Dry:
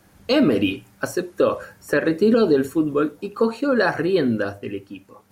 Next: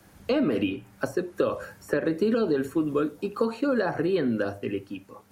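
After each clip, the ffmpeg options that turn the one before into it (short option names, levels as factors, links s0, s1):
-filter_complex "[0:a]acrossover=split=150|1000|2700[s0][s1][s2][s3];[s0]acompressor=threshold=0.00891:ratio=4[s4];[s1]acompressor=threshold=0.0708:ratio=4[s5];[s2]acompressor=threshold=0.0126:ratio=4[s6];[s3]acompressor=threshold=0.00355:ratio=4[s7];[s4][s5][s6][s7]amix=inputs=4:normalize=0"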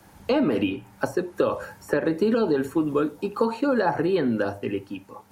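-af "equalizer=f=880:t=o:w=0.29:g=9.5,volume=1.26"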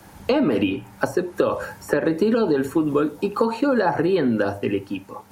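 -af "acompressor=threshold=0.0631:ratio=2,volume=2"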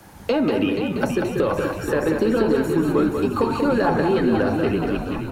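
-filter_complex "[0:a]asplit=2[s0][s1];[s1]asplit=8[s2][s3][s4][s5][s6][s7][s8][s9];[s2]adelay=478,afreqshift=-61,volume=0.422[s10];[s3]adelay=956,afreqshift=-122,volume=0.257[s11];[s4]adelay=1434,afreqshift=-183,volume=0.157[s12];[s5]adelay=1912,afreqshift=-244,volume=0.0955[s13];[s6]adelay=2390,afreqshift=-305,volume=0.0582[s14];[s7]adelay=2868,afreqshift=-366,volume=0.0355[s15];[s8]adelay=3346,afreqshift=-427,volume=0.0216[s16];[s9]adelay=3824,afreqshift=-488,volume=0.0132[s17];[s10][s11][s12][s13][s14][s15][s16][s17]amix=inputs=8:normalize=0[s18];[s0][s18]amix=inputs=2:normalize=0,asoftclip=type=tanh:threshold=0.299,asplit=2[s19][s20];[s20]aecho=0:1:189:0.562[s21];[s19][s21]amix=inputs=2:normalize=0"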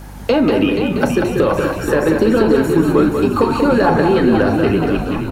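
-filter_complex "[0:a]asplit=2[s0][s1];[s1]adelay=37,volume=0.224[s2];[s0][s2]amix=inputs=2:normalize=0,aeval=exprs='val(0)+0.0112*(sin(2*PI*50*n/s)+sin(2*PI*2*50*n/s)/2+sin(2*PI*3*50*n/s)/3+sin(2*PI*4*50*n/s)/4+sin(2*PI*5*50*n/s)/5)':c=same,volume=2"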